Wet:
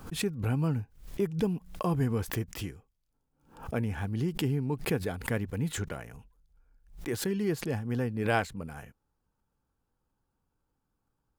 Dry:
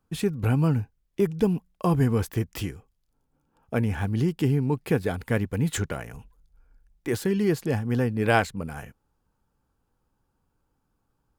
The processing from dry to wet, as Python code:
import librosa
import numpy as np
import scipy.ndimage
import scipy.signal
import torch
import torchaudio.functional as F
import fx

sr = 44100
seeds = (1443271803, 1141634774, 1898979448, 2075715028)

y = fx.pre_swell(x, sr, db_per_s=120.0)
y = y * librosa.db_to_amplitude(-6.5)